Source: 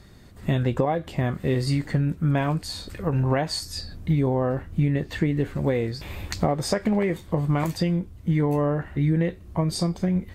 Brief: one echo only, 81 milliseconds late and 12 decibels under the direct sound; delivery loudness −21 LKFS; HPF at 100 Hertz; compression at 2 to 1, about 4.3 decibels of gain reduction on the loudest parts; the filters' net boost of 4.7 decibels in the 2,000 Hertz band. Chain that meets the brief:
high-pass filter 100 Hz
parametric band 2,000 Hz +5.5 dB
downward compressor 2 to 1, threshold −26 dBFS
single-tap delay 81 ms −12 dB
level +8 dB

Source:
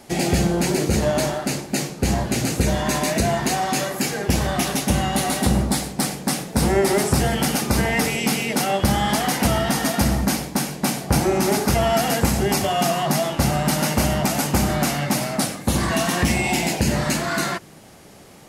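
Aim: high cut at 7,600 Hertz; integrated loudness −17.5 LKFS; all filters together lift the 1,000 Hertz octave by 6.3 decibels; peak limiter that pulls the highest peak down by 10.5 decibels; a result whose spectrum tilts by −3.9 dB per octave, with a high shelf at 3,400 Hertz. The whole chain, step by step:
low-pass filter 7,600 Hz
parametric band 1,000 Hz +8.5 dB
high-shelf EQ 3,400 Hz +5 dB
level +5.5 dB
brickwall limiter −8.5 dBFS

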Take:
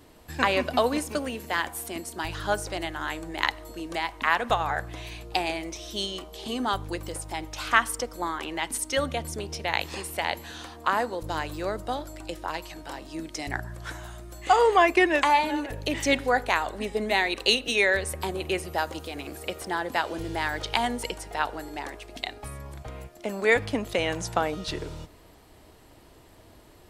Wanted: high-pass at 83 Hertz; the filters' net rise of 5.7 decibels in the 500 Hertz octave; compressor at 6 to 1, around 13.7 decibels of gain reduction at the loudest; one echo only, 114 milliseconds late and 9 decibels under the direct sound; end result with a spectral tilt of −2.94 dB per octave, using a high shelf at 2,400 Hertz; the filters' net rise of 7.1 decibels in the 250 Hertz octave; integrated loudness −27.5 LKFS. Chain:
high-pass filter 83 Hz
parametric band 250 Hz +7.5 dB
parametric band 500 Hz +4.5 dB
high-shelf EQ 2,400 Hz +8 dB
downward compressor 6 to 1, threshold −26 dBFS
single-tap delay 114 ms −9 dB
level +3 dB

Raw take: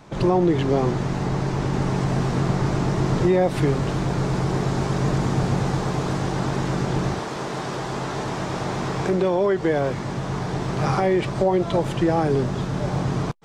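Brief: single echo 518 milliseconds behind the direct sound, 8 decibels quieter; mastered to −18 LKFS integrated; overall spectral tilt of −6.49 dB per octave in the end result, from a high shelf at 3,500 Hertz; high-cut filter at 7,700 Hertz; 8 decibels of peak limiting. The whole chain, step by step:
low-pass filter 7,700 Hz
high-shelf EQ 3,500 Hz −7 dB
brickwall limiter −17 dBFS
single-tap delay 518 ms −8 dB
level +7 dB

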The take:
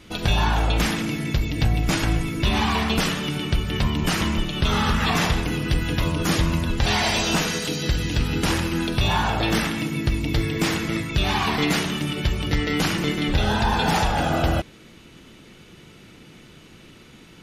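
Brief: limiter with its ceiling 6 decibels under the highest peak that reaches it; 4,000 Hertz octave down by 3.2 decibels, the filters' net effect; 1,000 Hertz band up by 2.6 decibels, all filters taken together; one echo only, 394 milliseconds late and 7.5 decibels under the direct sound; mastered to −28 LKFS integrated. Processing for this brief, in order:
parametric band 1,000 Hz +3.5 dB
parametric band 4,000 Hz −4.5 dB
brickwall limiter −15 dBFS
single-tap delay 394 ms −7.5 dB
level −3.5 dB

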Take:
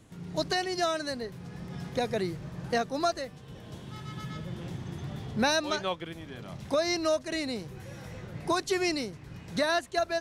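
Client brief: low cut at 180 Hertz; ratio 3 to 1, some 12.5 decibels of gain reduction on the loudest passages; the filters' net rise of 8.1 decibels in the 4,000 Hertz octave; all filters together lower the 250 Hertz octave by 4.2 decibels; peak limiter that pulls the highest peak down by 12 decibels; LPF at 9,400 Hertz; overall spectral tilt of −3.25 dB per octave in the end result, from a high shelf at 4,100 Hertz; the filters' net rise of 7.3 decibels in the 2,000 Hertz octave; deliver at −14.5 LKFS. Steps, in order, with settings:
high-pass filter 180 Hz
low-pass filter 9,400 Hz
parametric band 250 Hz −5 dB
parametric band 2,000 Hz +7 dB
parametric band 4,000 Hz +4.5 dB
high-shelf EQ 4,100 Hz +5.5 dB
downward compressor 3 to 1, threshold −36 dBFS
level +26.5 dB
brickwall limiter −3.5 dBFS

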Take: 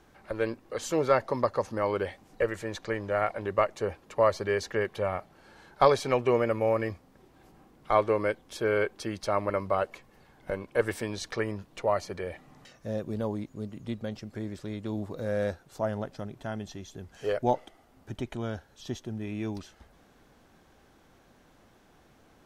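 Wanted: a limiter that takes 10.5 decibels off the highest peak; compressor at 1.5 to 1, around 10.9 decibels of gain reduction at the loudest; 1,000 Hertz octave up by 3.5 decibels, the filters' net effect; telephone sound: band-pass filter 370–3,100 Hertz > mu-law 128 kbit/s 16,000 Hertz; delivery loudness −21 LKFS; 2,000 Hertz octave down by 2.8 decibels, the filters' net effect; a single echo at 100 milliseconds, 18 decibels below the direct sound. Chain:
parametric band 1,000 Hz +6 dB
parametric band 2,000 Hz −5.5 dB
downward compressor 1.5 to 1, threshold −44 dBFS
brickwall limiter −25.5 dBFS
band-pass filter 370–3,100 Hz
single-tap delay 100 ms −18 dB
level +20.5 dB
mu-law 128 kbit/s 16,000 Hz

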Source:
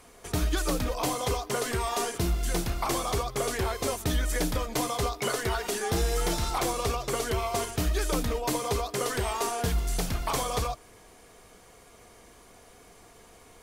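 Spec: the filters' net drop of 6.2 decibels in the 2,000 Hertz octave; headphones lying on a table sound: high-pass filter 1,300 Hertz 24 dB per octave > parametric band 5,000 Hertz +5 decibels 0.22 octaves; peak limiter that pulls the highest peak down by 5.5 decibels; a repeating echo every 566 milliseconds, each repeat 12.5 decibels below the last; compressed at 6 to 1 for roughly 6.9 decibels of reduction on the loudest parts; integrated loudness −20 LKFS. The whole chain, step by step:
parametric band 2,000 Hz −7.5 dB
downward compressor 6 to 1, threshold −30 dBFS
brickwall limiter −25.5 dBFS
high-pass filter 1,300 Hz 24 dB per octave
parametric band 5,000 Hz +5 dB 0.22 octaves
repeating echo 566 ms, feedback 24%, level −12.5 dB
level +20 dB

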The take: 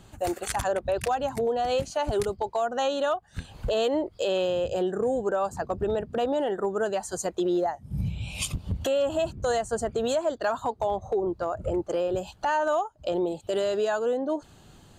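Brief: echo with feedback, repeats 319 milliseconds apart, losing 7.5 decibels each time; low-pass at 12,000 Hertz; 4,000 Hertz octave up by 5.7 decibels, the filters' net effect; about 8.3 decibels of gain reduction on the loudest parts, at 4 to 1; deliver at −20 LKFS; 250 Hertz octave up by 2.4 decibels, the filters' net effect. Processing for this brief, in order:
low-pass filter 12,000 Hz
parametric band 250 Hz +3.5 dB
parametric band 4,000 Hz +7.5 dB
downward compressor 4 to 1, threshold −31 dBFS
repeating echo 319 ms, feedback 42%, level −7.5 dB
level +13.5 dB

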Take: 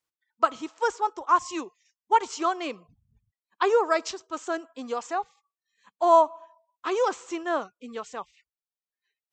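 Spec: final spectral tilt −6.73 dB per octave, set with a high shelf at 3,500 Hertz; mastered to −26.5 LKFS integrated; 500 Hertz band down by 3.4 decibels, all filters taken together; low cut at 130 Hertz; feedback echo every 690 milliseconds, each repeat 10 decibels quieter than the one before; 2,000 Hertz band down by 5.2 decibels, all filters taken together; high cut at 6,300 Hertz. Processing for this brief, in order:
high-pass filter 130 Hz
low-pass filter 6,300 Hz
parametric band 500 Hz −4 dB
parametric band 2,000 Hz −5.5 dB
high-shelf EQ 3,500 Hz −6 dB
repeating echo 690 ms, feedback 32%, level −10 dB
level +3 dB

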